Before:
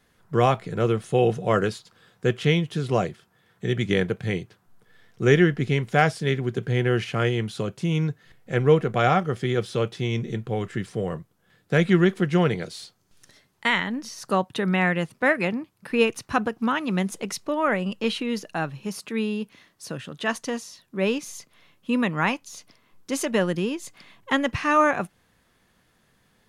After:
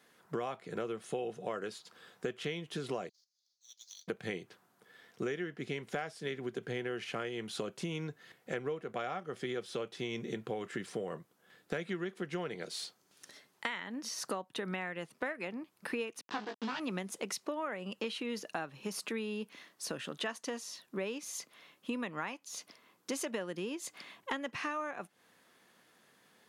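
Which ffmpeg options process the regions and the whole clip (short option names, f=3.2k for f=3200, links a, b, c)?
-filter_complex "[0:a]asettb=1/sr,asplit=3[a][b][c];[a]atrim=end=3.094[d];[b]atrim=start=3.09:end=4.08,asetpts=PTS-STARTPTS,afade=t=in:d=0.004:c=qsin,afade=t=out:st=0.986:d=0.004:c=qsin,asuperpass=centerf=5300:order=8:qfactor=2.1,acrusher=bits=3:mode=log:mix=0:aa=0.000001[e];[c]atrim=start=4.076[f];[d][e]acrossfade=d=0.004:c1=hsin:c2=qsin[g];[g][f]acrossfade=d=0.004:c1=qsin:c2=hsin,asettb=1/sr,asplit=3[h][i][j];[h]atrim=end=16.214[k];[i]atrim=start=16.21:end=16.8,asetpts=PTS-STARTPTS,afade=t=in:d=0.004:c=qsin,afade=t=out:st=0.586:d=0.004:c=qsin,acrusher=bits=3:dc=4:mix=0:aa=0.000001,highpass=130,equalizer=f=560:t=q:w=4:g=-10,equalizer=f=1.3k:t=q:w=4:g=-5,equalizer=f=2.2k:t=q:w=4:g=-8,lowpass=f=5k:w=0.5412,lowpass=f=5k:w=1.3066,asplit=2[l][m];[m]adelay=19,volume=-4.5dB[n];[l][n]amix=inputs=2:normalize=0,atrim=end_sample=26019[o];[j]atrim=start=16.796[p];[k][o]acrossfade=d=0.004:c1=hsin:c2=qsin[q];[q][p]acrossfade=d=0.004:c1=qsin:c2=hsin,highpass=260,acompressor=threshold=-34dB:ratio=12"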